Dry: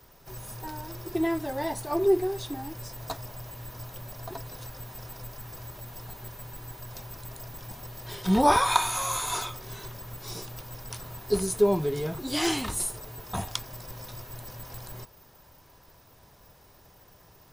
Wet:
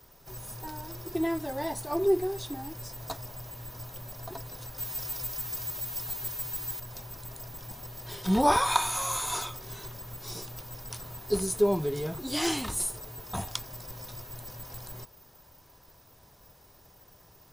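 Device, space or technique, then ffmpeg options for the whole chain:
exciter from parts: -filter_complex "[0:a]asplit=2[link_01][link_02];[link_02]highpass=frequency=3000:poles=1,asoftclip=type=tanh:threshold=-27.5dB,highpass=2100,volume=-8dB[link_03];[link_01][link_03]amix=inputs=2:normalize=0,asettb=1/sr,asplit=3[link_04][link_05][link_06];[link_04]atrim=end=4.784[link_07];[link_05]atrim=start=4.78:end=6.8,asetpts=PTS-STARTPTS,afade=type=in:duration=0.004:curve=qsin,afade=type=out:start_time=2.016:duration=0.004:curve=qsin,highshelf=frequency=2200:gain=10.5[link_08];[link_06]atrim=start=6.796[link_09];[link_07][link_08]acrossfade=duration=0.004:curve1=hsin:curve2=qsin[link_10];[link_10][link_09]acrossfade=duration=0.004:curve1=qsin:curve2=hsin,volume=-2dB"

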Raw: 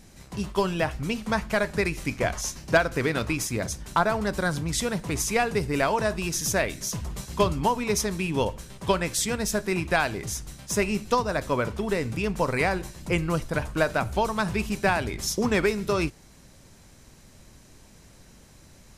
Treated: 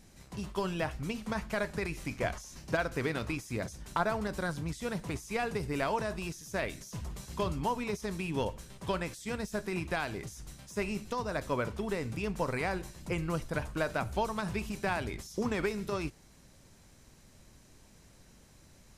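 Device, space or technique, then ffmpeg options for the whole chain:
de-esser from a sidechain: -filter_complex "[0:a]asplit=2[link_01][link_02];[link_02]highpass=frequency=4500:width=0.5412,highpass=frequency=4500:width=1.3066,apad=whole_len=836995[link_03];[link_01][link_03]sidechaincompress=threshold=-39dB:ratio=8:attack=0.78:release=25,volume=-6.5dB"

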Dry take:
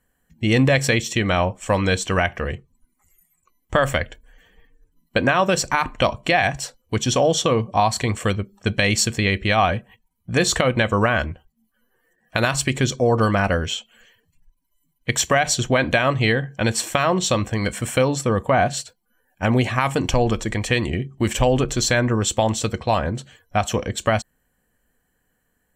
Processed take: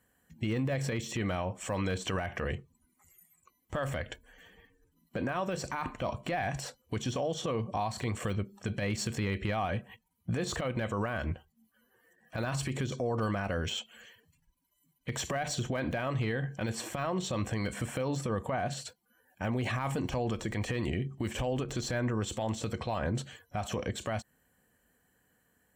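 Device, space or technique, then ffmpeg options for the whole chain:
podcast mastering chain: -af "highpass=66,deesser=0.8,acompressor=threshold=-23dB:ratio=4,alimiter=limit=-23.5dB:level=0:latency=1:release=73" -ar 48000 -c:a libmp3lame -b:a 128k

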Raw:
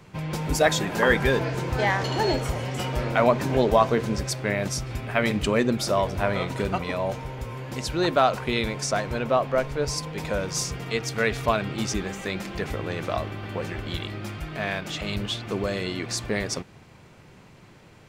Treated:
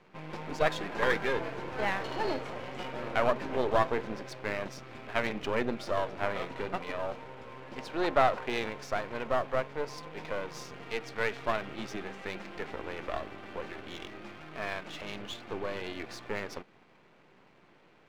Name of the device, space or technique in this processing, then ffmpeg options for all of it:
crystal radio: -filter_complex "[0:a]highpass=250,lowpass=3000,aeval=exprs='if(lt(val(0),0),0.251*val(0),val(0))':channel_layout=same,asettb=1/sr,asplit=3[link_01][link_02][link_03];[link_01]atrim=end=7.774[link_04];[link_02]atrim=start=7.77:end=8.7,asetpts=PTS-STARTPTS,afade=type=in:duration=0.004:curve=qsin,afade=type=out:start_time=0.926:duration=0.004:curve=qsin,equalizer=frequency=730:width=0.63:gain=3.5[link_05];[link_03]atrim=start=8.696[link_06];[link_04][link_05]acrossfade=duration=0.004:curve1=hsin:curve2=qsin[link_07];[link_07][link_06]acrossfade=duration=0.004:curve1=qsin:curve2=hsin,volume=-3.5dB"

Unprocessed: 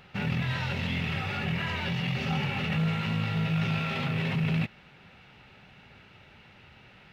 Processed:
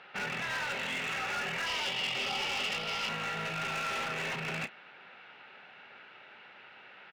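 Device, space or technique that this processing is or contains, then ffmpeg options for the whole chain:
megaphone: -filter_complex "[0:a]highpass=460,lowpass=3400,equalizer=frequency=1500:width_type=o:width=0.34:gain=5,asoftclip=type=hard:threshold=-34.5dB,asplit=2[link_01][link_02];[link_02]adelay=31,volume=-14dB[link_03];[link_01][link_03]amix=inputs=2:normalize=0,asettb=1/sr,asplit=3[link_04][link_05][link_06];[link_04]atrim=end=1.664[link_07];[link_05]atrim=start=1.66:end=3.09,asetpts=PTS-STARTPTS,afade=type=in:duration=0.004:curve=qsin,afade=type=out:start_time=1.426:duration=0.004:curve=qsin,equalizer=frequency=160:width_type=o:width=0.33:gain=-8,equalizer=frequency=1600:width_type=o:width=0.33:gain=-9,equalizer=frequency=3150:width_type=o:width=0.33:gain=9,equalizer=frequency=5000:width_type=o:width=0.33:gain=9[link_08];[link_06]atrim=start=3.086[link_09];[link_07][link_08]acrossfade=duration=0.004:curve1=hsin:curve2=qsin[link_10];[link_10][link_09]acrossfade=duration=0.004:curve1=qsin:curve2=hsin,volume=2.5dB"

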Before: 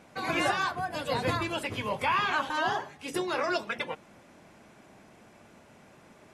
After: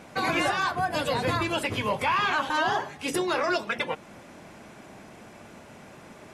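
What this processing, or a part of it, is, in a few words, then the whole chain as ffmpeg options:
soft clipper into limiter: -af "asoftclip=type=tanh:threshold=-17.5dB,alimiter=level_in=1dB:limit=-24dB:level=0:latency=1:release=323,volume=-1dB,volume=8dB"

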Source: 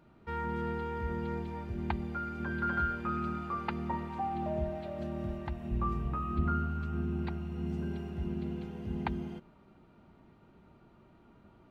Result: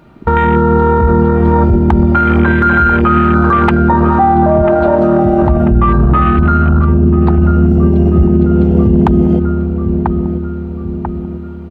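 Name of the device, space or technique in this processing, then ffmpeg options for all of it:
loud club master: -filter_complex "[0:a]afwtdn=0.01,asettb=1/sr,asplit=3[link_01][link_02][link_03];[link_01]atrim=end=4.624[link_04];[link_02]atrim=start=4.62:end=5.42,asetpts=PTS-STARTPTS,afade=type=in:duration=0.004:curve=qsin,afade=type=out:start_time=0.796:duration=0.004:curve=qsin,highpass=frequency=210:poles=1[link_05];[link_03]atrim=start=5.416[link_06];[link_04][link_05]acrossfade=duration=0.004:curve1=hsin:curve2=qsin[link_07];[link_07][link_06]acrossfade=duration=0.004:curve1=qsin:curve2=hsin,asplit=2[link_08][link_09];[link_09]adelay=991,lowpass=frequency=2400:poles=1,volume=-14.5dB,asplit=2[link_10][link_11];[link_11]adelay=991,lowpass=frequency=2400:poles=1,volume=0.49,asplit=2[link_12][link_13];[link_13]adelay=991,lowpass=frequency=2400:poles=1,volume=0.49,asplit=2[link_14][link_15];[link_15]adelay=991,lowpass=frequency=2400:poles=1,volume=0.49,asplit=2[link_16][link_17];[link_17]adelay=991,lowpass=frequency=2400:poles=1,volume=0.49[link_18];[link_08][link_10][link_12][link_14][link_16][link_18]amix=inputs=6:normalize=0,acompressor=threshold=-35dB:ratio=3,asoftclip=type=hard:threshold=-27dB,alimiter=level_in=35.5dB:limit=-1dB:release=50:level=0:latency=1,volume=-1dB"

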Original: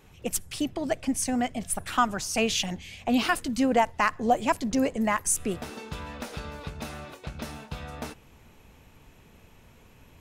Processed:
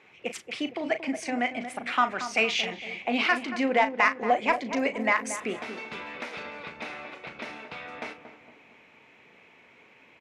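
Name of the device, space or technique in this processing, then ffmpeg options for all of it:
intercom: -filter_complex "[0:a]asettb=1/sr,asplit=3[link_01][link_02][link_03];[link_01]atrim=end=4.764[link_04];[link_02]atrim=start=4.76:end=6.43,asetpts=PTS-STARTPTS,afade=type=in:duration=0.004:curve=qsin,afade=type=out:start_time=1.666:duration=0.004:curve=qsin,highshelf=frequency=7400:gain=6[link_05];[link_03]atrim=start=6.426[link_06];[link_04][link_05]acrossfade=duration=0.004:curve1=hsin:curve2=qsin[link_07];[link_07][link_06]acrossfade=duration=0.004:curve1=qsin:curve2=hsin,highpass=320,lowpass=3800,equalizer=frequency=2200:width_type=o:width=0.48:gain=11.5,asoftclip=type=tanh:threshold=-10dB,asplit=2[link_08][link_09];[link_09]adelay=37,volume=-10.5dB[link_10];[link_08][link_10]amix=inputs=2:normalize=0,asplit=2[link_11][link_12];[link_12]adelay=230,lowpass=frequency=1100:poles=1,volume=-9dB,asplit=2[link_13][link_14];[link_14]adelay=230,lowpass=frequency=1100:poles=1,volume=0.51,asplit=2[link_15][link_16];[link_16]adelay=230,lowpass=frequency=1100:poles=1,volume=0.51,asplit=2[link_17][link_18];[link_18]adelay=230,lowpass=frequency=1100:poles=1,volume=0.51,asplit=2[link_19][link_20];[link_20]adelay=230,lowpass=frequency=1100:poles=1,volume=0.51,asplit=2[link_21][link_22];[link_22]adelay=230,lowpass=frequency=1100:poles=1,volume=0.51[link_23];[link_11][link_13][link_15][link_17][link_19][link_21][link_23]amix=inputs=7:normalize=0"

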